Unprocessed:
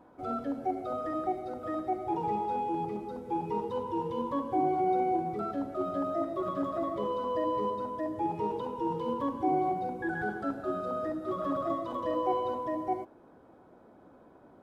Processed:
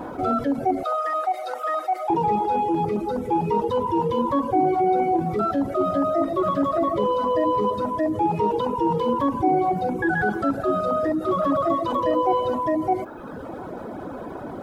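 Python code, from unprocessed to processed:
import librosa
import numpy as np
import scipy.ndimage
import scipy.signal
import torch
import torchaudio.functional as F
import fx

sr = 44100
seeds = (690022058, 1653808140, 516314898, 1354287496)

y = fx.dereverb_blind(x, sr, rt60_s=0.83)
y = fx.highpass(y, sr, hz=680.0, slope=24, at=(0.83, 2.1))
y = fx.env_flatten(y, sr, amount_pct=50)
y = y * librosa.db_to_amplitude(8.0)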